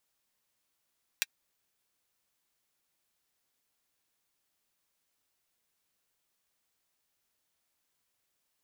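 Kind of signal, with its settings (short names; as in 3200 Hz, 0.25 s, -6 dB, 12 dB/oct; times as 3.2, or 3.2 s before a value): closed hi-hat, high-pass 2000 Hz, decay 0.04 s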